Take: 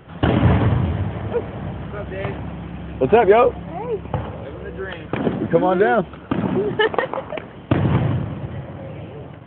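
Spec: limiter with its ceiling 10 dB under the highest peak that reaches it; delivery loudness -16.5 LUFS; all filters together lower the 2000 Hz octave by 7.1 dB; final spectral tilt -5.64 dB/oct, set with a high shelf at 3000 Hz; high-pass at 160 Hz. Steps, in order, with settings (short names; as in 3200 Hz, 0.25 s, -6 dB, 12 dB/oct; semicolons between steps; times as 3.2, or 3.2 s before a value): HPF 160 Hz; bell 2000 Hz -8 dB; high shelf 3000 Hz -5 dB; gain +9 dB; limiter -3.5 dBFS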